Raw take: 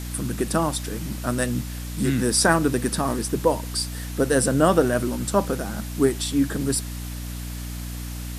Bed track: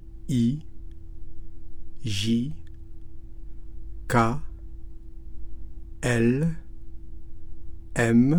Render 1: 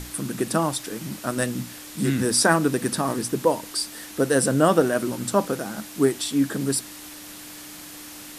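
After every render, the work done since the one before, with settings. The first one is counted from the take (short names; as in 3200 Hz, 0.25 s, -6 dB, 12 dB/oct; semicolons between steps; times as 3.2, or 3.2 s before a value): notches 60/120/180/240 Hz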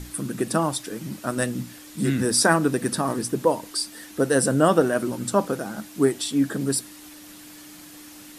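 denoiser 6 dB, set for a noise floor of -41 dBFS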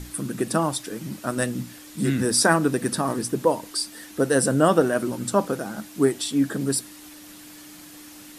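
nothing audible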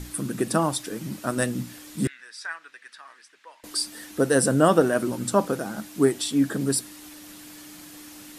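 2.07–3.64 ladder band-pass 2300 Hz, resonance 35%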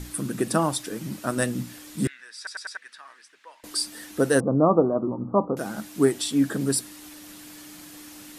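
2.37 stutter in place 0.10 s, 4 plays; 4.4–5.57 Chebyshev low-pass 1200 Hz, order 6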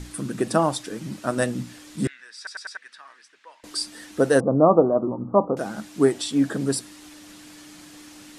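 LPF 8600 Hz 12 dB/oct; dynamic EQ 650 Hz, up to +5 dB, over -33 dBFS, Q 1.2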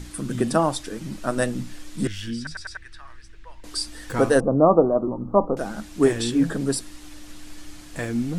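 add bed track -7 dB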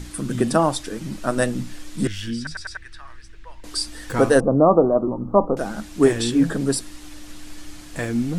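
gain +2.5 dB; limiter -3 dBFS, peak gain reduction 2.5 dB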